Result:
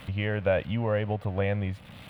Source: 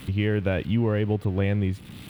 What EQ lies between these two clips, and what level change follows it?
bass and treble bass +2 dB, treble −10 dB
low shelf with overshoot 460 Hz −6.5 dB, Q 3
0.0 dB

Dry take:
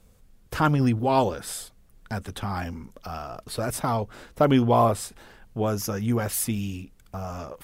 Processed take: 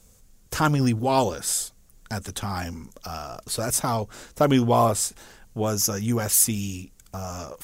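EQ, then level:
parametric band 6,600 Hz +10 dB 0.91 octaves
high-shelf EQ 8,500 Hz +8.5 dB
0.0 dB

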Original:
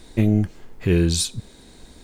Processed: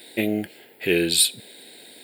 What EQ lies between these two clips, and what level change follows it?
high-pass filter 520 Hz 12 dB per octave
high-shelf EQ 8,800 Hz +9.5 dB
phaser with its sweep stopped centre 2,700 Hz, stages 4
+8.5 dB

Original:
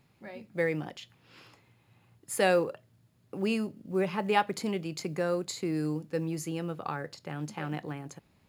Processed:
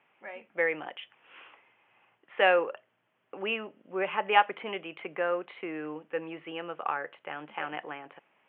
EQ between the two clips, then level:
high-pass filter 630 Hz 12 dB per octave
Butterworth low-pass 3,200 Hz 96 dB per octave
+5.5 dB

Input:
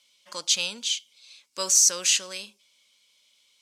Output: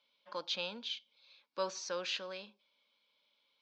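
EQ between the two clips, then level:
high-frequency loss of the air 91 metres
loudspeaker in its box 260–4,100 Hz, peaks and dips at 270 Hz −3 dB, 400 Hz −6 dB, 640 Hz −3 dB, 1,200 Hz −4 dB, 2,000 Hz −9 dB, 2,900 Hz −7 dB
high-shelf EQ 2,500 Hz −10.5 dB
+2.0 dB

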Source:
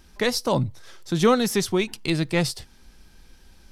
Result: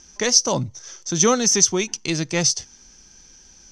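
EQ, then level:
low-pass with resonance 6,100 Hz, resonance Q 16
low-shelf EQ 67 Hz −9 dB
notch filter 3,900 Hz, Q 9.9
0.0 dB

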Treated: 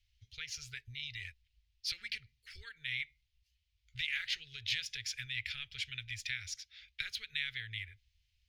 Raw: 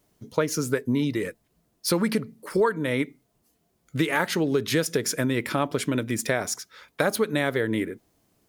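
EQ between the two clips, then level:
inverse Chebyshev band-stop filter 170–1,100 Hz, stop band 50 dB
high-frequency loss of the air 250 metres
+4.0 dB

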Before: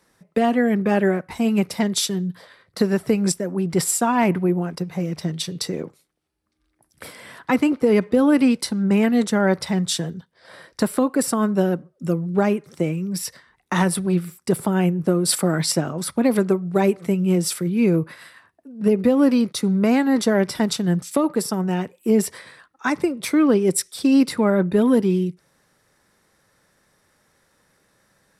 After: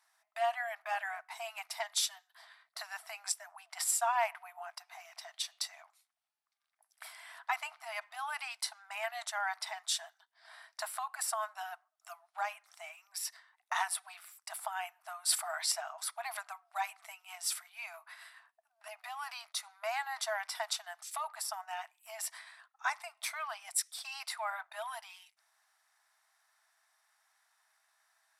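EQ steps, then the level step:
linear-phase brick-wall high-pass 630 Hz
−9.0 dB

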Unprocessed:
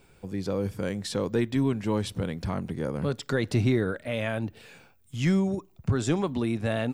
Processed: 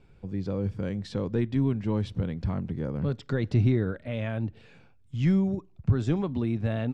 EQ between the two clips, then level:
low-pass filter 4,600 Hz 12 dB per octave
low-shelf EQ 250 Hz +11.5 dB
−6.5 dB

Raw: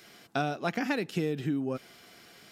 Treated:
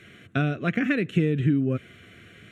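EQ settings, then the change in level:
high-frequency loss of the air 76 metres
parametric band 93 Hz +14 dB 0.91 octaves
phaser with its sweep stopped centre 2,100 Hz, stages 4
+7.5 dB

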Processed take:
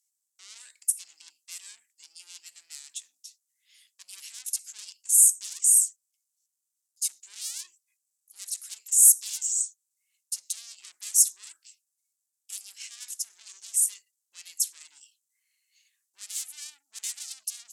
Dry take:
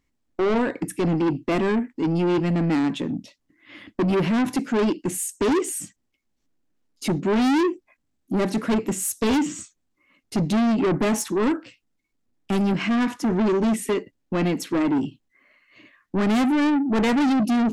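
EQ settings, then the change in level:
resonant band-pass 7,700 Hz, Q 1.5
first difference
spectral tilt +4 dB per octave
0.0 dB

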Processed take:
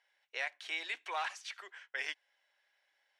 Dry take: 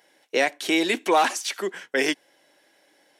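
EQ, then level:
band-pass filter 650–2,000 Hz
first difference
+2.0 dB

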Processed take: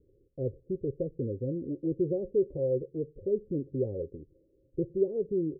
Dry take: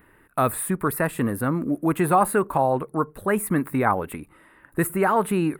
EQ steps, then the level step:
Chebyshev low-pass with heavy ripple 550 Hz, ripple 6 dB
parametric band 190 Hz −14 dB 1.2 octaves
+2.0 dB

